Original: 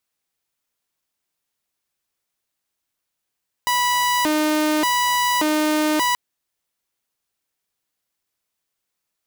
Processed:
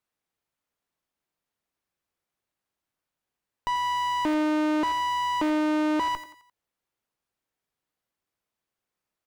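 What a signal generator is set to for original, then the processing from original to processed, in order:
siren hi-lo 306–982 Hz 0.86 per s saw -14.5 dBFS 2.48 s
treble shelf 2.7 kHz -11.5 dB; feedback delay 87 ms, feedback 42%, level -17 dB; one-sided clip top -30 dBFS

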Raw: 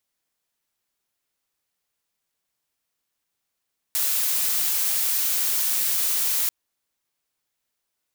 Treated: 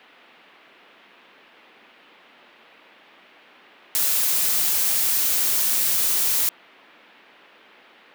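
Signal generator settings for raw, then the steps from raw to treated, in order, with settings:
noise blue, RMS -23 dBFS 2.54 s
bass shelf 450 Hz +8 dB; in parallel at -7 dB: overload inside the chain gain 24 dB; on the sum: band noise 210–3100 Hz -53 dBFS

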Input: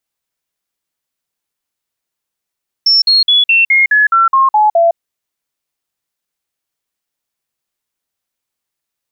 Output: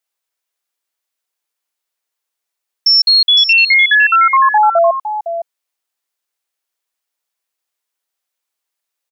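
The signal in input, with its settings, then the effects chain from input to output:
stepped sine 5.4 kHz down, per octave 3, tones 10, 0.16 s, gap 0.05 s -6 dBFS
high-pass 440 Hz 12 dB/octave; on a send: delay 509 ms -10 dB

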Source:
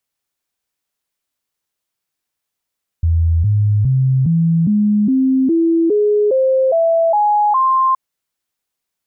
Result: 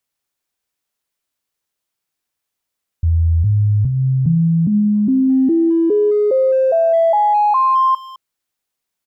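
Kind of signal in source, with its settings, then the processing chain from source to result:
stepped sine 82.8 Hz up, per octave 3, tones 12, 0.41 s, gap 0.00 s -10.5 dBFS
de-hum 67.06 Hz, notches 3; speakerphone echo 210 ms, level -14 dB

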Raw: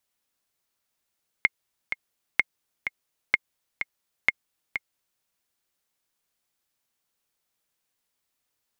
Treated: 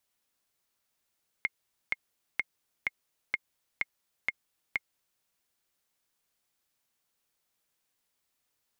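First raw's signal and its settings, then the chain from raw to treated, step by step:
metronome 127 bpm, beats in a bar 2, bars 4, 2.14 kHz, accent 9 dB -5 dBFS
peak limiter -15.5 dBFS

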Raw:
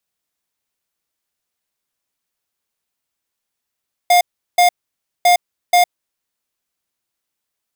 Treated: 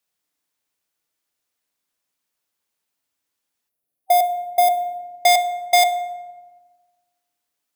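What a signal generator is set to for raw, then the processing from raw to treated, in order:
beep pattern square 709 Hz, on 0.11 s, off 0.37 s, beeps 2, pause 0.56 s, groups 2, -10.5 dBFS
time-frequency box 3.69–5.00 s, 770–9300 Hz -11 dB; bass shelf 100 Hz -7 dB; FDN reverb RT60 1.3 s, low-frequency decay 1.45×, high-frequency decay 0.5×, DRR 9 dB

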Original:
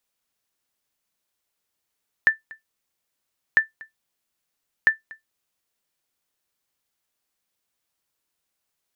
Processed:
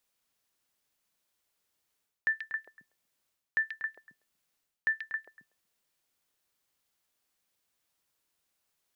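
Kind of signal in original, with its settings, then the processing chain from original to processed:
sonar ping 1.77 kHz, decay 0.14 s, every 1.30 s, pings 3, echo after 0.24 s, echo -24 dB -7 dBFS
repeats whose band climbs or falls 135 ms, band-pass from 3.5 kHz, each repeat -1.4 oct, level -10 dB; reverse; compression 4:1, threshold -29 dBFS; reverse

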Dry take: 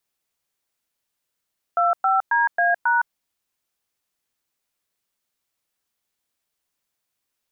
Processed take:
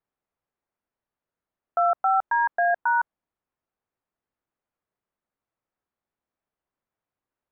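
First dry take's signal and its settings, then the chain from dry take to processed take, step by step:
DTMF "25DA#", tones 162 ms, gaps 109 ms, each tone -18.5 dBFS
low-pass 1.3 kHz 12 dB/octave

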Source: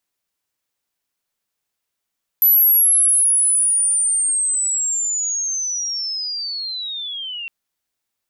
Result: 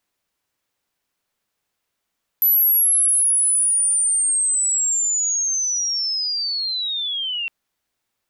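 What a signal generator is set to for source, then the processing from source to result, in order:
sweep linear 12 kHz -> 2.7 kHz -9.5 dBFS -> -26.5 dBFS 5.06 s
treble shelf 4 kHz -6.5 dB; in parallel at 0 dB: peak limiter -23 dBFS

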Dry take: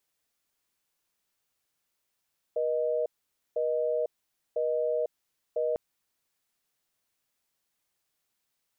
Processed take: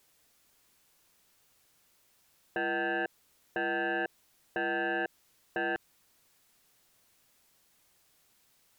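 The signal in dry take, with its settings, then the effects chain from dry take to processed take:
call progress tone busy tone, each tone -28 dBFS 3.20 s
bass shelf 390 Hz +3 dB; peak limiter -27.5 dBFS; sine folder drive 8 dB, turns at -27.5 dBFS

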